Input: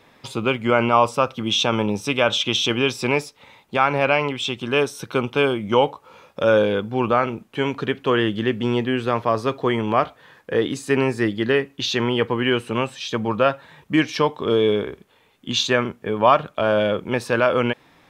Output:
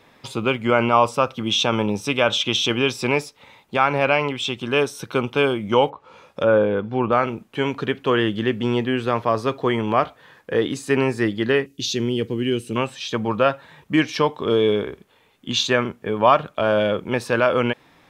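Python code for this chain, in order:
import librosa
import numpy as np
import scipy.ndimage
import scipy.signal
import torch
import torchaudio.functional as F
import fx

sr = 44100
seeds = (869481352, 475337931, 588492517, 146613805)

y = fx.env_lowpass_down(x, sr, base_hz=1700.0, full_db=-16.0, at=(5.89, 7.11), fade=0.02)
y = fx.curve_eq(y, sr, hz=(360.0, 1000.0, 5800.0), db=(0, -20, 4), at=(11.66, 12.76))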